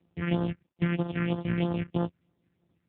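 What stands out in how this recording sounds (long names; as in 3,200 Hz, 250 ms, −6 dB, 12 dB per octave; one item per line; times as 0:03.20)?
a buzz of ramps at a fixed pitch in blocks of 256 samples
phaser sweep stages 4, 3.1 Hz, lowest notch 730–2,400 Hz
tremolo triangle 10 Hz, depth 30%
AMR narrowband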